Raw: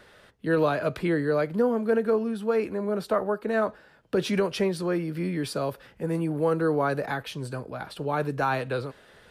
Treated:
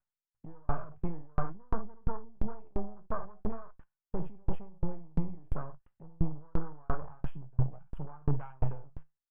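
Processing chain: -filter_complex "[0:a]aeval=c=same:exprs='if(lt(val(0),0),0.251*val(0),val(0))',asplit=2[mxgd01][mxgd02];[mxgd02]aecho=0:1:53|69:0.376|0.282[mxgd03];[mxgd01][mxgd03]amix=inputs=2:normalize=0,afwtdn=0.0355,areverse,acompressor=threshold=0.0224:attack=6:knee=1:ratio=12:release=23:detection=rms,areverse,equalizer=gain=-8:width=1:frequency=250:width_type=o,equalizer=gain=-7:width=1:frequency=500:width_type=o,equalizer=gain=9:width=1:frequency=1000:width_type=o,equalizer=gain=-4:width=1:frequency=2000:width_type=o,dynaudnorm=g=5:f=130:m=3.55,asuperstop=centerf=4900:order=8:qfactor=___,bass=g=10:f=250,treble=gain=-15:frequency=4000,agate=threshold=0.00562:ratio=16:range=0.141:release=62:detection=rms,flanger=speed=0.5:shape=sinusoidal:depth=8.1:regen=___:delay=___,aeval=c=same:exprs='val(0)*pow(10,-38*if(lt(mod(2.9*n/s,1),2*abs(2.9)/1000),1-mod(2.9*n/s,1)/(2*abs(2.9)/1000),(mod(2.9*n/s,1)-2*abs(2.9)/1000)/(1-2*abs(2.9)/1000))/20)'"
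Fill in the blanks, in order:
1.1, 72, 5.3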